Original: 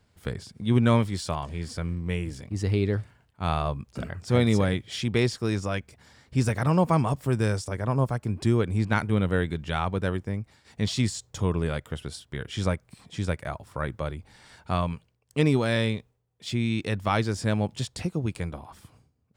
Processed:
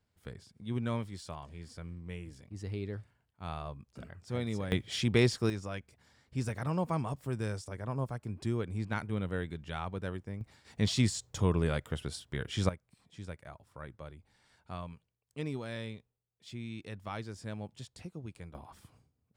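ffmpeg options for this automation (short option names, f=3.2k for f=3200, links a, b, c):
-af "asetnsamples=n=441:p=0,asendcmd='4.72 volume volume -2dB;5.5 volume volume -10.5dB;10.41 volume volume -2.5dB;12.69 volume volume -15.5dB;18.55 volume volume -6.5dB',volume=-13.5dB"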